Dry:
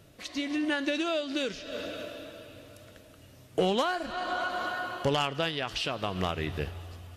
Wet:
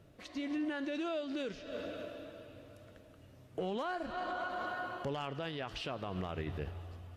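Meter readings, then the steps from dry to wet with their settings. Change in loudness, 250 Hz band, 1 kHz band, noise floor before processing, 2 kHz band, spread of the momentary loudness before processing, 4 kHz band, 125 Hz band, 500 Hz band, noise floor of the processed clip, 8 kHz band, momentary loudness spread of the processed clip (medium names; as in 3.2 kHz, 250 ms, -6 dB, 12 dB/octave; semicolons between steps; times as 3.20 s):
-8.5 dB, -6.0 dB, -7.5 dB, -54 dBFS, -9.5 dB, 15 LU, -13.0 dB, -6.5 dB, -8.0 dB, -58 dBFS, under -10 dB, 17 LU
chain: treble shelf 2.5 kHz -11 dB; peak limiter -26 dBFS, peak gain reduction 8.5 dB; trim -3.5 dB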